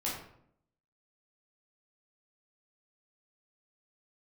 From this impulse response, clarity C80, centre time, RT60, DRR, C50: 6.5 dB, 47 ms, 0.70 s, −6.5 dB, 2.5 dB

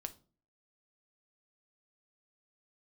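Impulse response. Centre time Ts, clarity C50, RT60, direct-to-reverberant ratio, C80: 4 ms, 17.5 dB, 0.40 s, 8.5 dB, 24.0 dB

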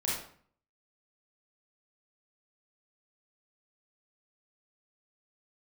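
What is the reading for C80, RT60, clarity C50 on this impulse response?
6.0 dB, 0.50 s, 0.5 dB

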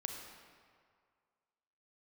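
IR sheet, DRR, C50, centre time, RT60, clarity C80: 2.5 dB, 3.5 dB, 60 ms, 2.0 s, 4.5 dB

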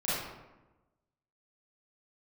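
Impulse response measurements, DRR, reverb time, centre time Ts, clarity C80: −11.5 dB, 1.1 s, 90 ms, 1.5 dB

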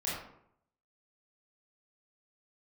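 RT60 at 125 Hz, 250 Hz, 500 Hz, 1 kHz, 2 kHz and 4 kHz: 0.85, 0.75, 0.70, 0.70, 0.55, 0.40 seconds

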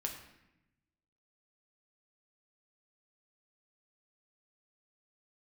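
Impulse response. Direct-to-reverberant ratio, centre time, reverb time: 1.5 dB, 26 ms, 0.90 s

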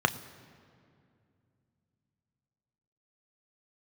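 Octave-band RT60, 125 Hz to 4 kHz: 3.8, 3.5, 2.6, 2.2, 2.0, 1.5 seconds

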